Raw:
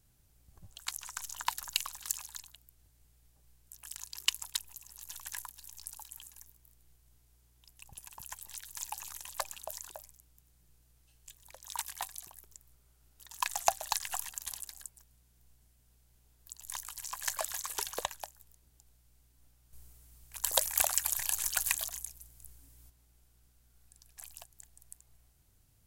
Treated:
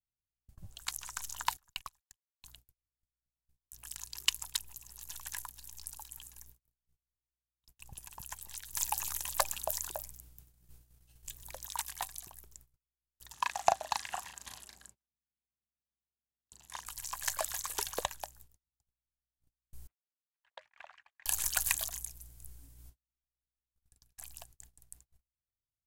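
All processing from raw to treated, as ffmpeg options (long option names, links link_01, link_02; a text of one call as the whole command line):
ffmpeg -i in.wav -filter_complex "[0:a]asettb=1/sr,asplit=3[link_01][link_02][link_03];[link_01]atrim=end=1.574[link_04];[link_02]atrim=start=1.57:end=2.42,asetpts=PTS-STARTPTS,afade=type=in:duration=0.004:curve=qsin,afade=type=out:start_time=0.846:duration=0.004:curve=qsin,acrossover=split=2600[link_05][link_06];[link_06]acompressor=threshold=-39dB:ratio=4:attack=1:release=60[link_07];[link_05][link_07]amix=inputs=2:normalize=0,agate=range=-27dB:threshold=-43dB:ratio=16:release=100:detection=peak[link_08];[link_03]atrim=start=2.416[link_09];[link_04][link_08]acrossfade=duration=0.004:curve1=hsin:curve2=qsin[link_10];[link_10][link_09]acrossfade=duration=0.004:curve1=qsin:curve2=hsin,asettb=1/sr,asplit=3[link_11][link_12][link_13];[link_11]atrim=end=8.734[link_14];[link_12]atrim=start=8.73:end=11.67,asetpts=PTS-STARTPTS,afade=type=in:duration=0.004:curve=qsin,afade=type=out:start_time=2.936:duration=0.004:curve=qsin,highshelf=frequency=12000:gain=6.5,acontrast=30[link_15];[link_13]atrim=start=11.666[link_16];[link_14][link_15]acrossfade=duration=0.004:curve1=hsin:curve2=qsin[link_17];[link_17][link_16]acrossfade=duration=0.004:curve1=qsin:curve2=hsin,asettb=1/sr,asplit=3[link_18][link_19][link_20];[link_18]atrim=end=13.334[link_21];[link_19]atrim=start=13.33:end=16.86,asetpts=PTS-STARTPTS,afade=type=in:duration=0.004:curve=qsin,afade=type=out:start_time=3.526:duration=0.004:curve=qsin,highpass=210,aemphasis=mode=reproduction:type=bsi,asplit=2[link_22][link_23];[link_23]adelay=37,volume=-5dB[link_24];[link_22][link_24]amix=inputs=2:normalize=0,atrim=end_sample=155673[link_25];[link_20]atrim=start=16.856[link_26];[link_21][link_25]acrossfade=duration=0.004:curve1=hsin:curve2=qsin[link_27];[link_27][link_26]acrossfade=duration=0.004:curve1=qsin:curve2=hsin,asettb=1/sr,asplit=3[link_28][link_29][link_30];[link_28]atrim=end=19.874[link_31];[link_29]atrim=start=19.87:end=21.26,asetpts=PTS-STARTPTS,afade=type=in:duration=0.004:curve=qsin,afade=type=out:start_time=1.386:duration=0.004:curve=qsin,lowpass=frequency=2100:width=0.5412,lowpass=frequency=2100:width=1.3066,aderivative[link_32];[link_30]atrim=start=21.256[link_33];[link_31][link_32]acrossfade=duration=0.004:curve1=hsin:curve2=qsin[link_34];[link_34][link_33]acrossfade=duration=0.004:curve1=qsin:curve2=hsin,agate=range=-36dB:threshold=-58dB:ratio=16:detection=peak,lowshelf=frequency=370:gain=5" out.wav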